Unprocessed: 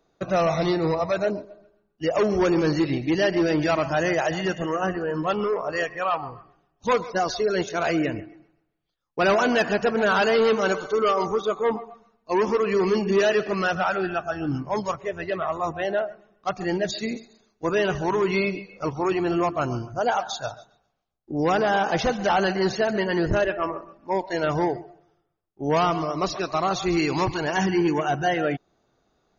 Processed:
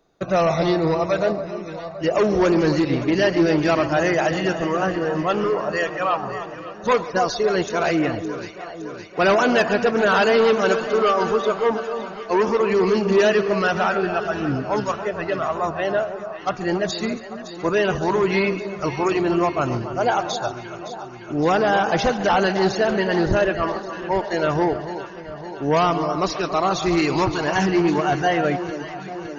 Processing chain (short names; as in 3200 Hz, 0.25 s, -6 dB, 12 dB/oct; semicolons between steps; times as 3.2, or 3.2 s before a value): 18.68–19.21 high shelf 4800 Hz +9 dB; on a send: echo with dull and thin repeats by turns 0.282 s, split 1300 Hz, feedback 80%, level -10.5 dB; on the sum: Doppler distortion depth 0.1 ms; gain +3 dB